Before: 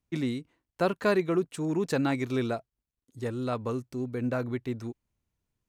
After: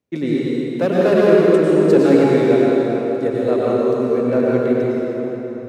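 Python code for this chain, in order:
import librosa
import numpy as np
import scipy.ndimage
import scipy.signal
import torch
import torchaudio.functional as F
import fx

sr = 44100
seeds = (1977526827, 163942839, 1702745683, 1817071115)

y = fx.graphic_eq_10(x, sr, hz=(500, 2000, 4000), db=(11, 5, 3))
y = np.clip(y, -10.0 ** (-14.5 / 20.0), 10.0 ** (-14.5 / 20.0))
y = scipy.signal.sosfilt(scipy.signal.butter(2, 88.0, 'highpass', fs=sr, output='sos'), y)
y = fx.peak_eq(y, sr, hz=270.0, db=6.5, octaves=2.3)
y = fx.rev_plate(y, sr, seeds[0], rt60_s=4.0, hf_ratio=0.7, predelay_ms=85, drr_db=-6.0)
y = y * 10.0 ** (-2.5 / 20.0)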